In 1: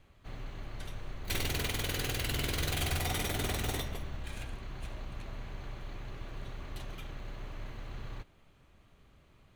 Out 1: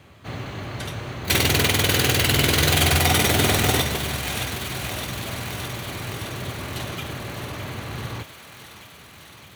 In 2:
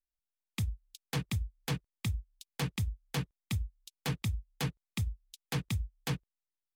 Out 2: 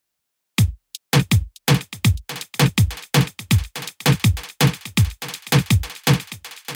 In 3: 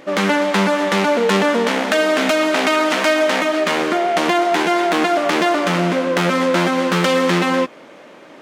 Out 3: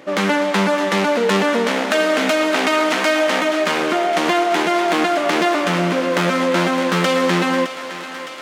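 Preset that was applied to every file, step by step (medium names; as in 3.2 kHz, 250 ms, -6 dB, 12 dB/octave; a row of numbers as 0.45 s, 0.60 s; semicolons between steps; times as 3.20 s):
high-pass 81 Hz 24 dB/octave; thinning echo 613 ms, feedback 76%, high-pass 600 Hz, level -11 dB; peak normalisation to -3 dBFS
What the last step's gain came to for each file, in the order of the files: +15.5 dB, +18.5 dB, -1.0 dB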